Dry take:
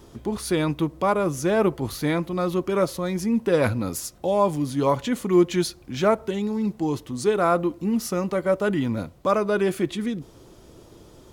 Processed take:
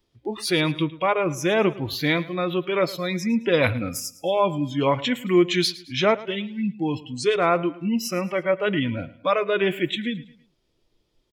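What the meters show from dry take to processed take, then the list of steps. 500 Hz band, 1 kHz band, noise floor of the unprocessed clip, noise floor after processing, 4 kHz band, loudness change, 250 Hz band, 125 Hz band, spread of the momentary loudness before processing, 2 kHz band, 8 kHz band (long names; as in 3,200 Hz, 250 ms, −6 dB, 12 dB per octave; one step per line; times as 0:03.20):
0.0 dB, 0.0 dB, −50 dBFS, −70 dBFS, +8.5 dB, +0.5 dB, −1.0 dB, −0.5 dB, 7 LU, +5.5 dB, −0.5 dB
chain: noise reduction from a noise print of the clip's start 25 dB
flat-topped bell 3,100 Hz +9.5 dB
repeating echo 109 ms, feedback 38%, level −18.5 dB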